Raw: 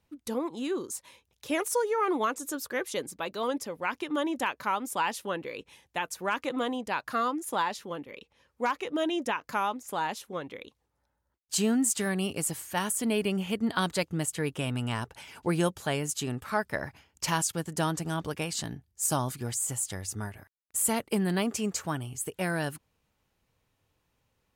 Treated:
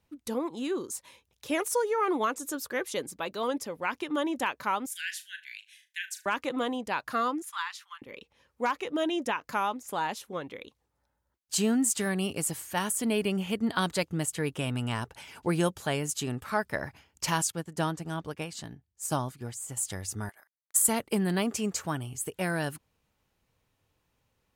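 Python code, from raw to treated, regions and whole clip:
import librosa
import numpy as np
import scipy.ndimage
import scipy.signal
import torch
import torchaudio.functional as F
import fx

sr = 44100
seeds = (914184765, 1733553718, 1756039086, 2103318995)

y = fx.chain(x, sr, fx.cheby1_highpass(hz=1500.0, order=10),
    fx.room_flutter(wall_m=6.5, rt60_s=0.21), at=(4.86, 6.26))
y = fx.chain(y, sr, fx.steep_highpass(hz=1100.0, slope=48),
    fx.high_shelf(hz=6200.0, db=-6.0), at=(7.42, 8.02))
y = fx.chain(y, sr, fx.high_shelf(hz=4700.0, db=-5.0),
    fx.upward_expand(threshold_db=-43.0, expansion=1.5), at=(17.5, 19.77))
y = fx.chain(y, sr, fx.highpass(hz=920.0, slope=12),
    fx.peak_eq(hz=2600.0, db=-14.0, octaves=0.34),
    fx.transient(attack_db=8, sustain_db=-11), at=(20.29, 20.88))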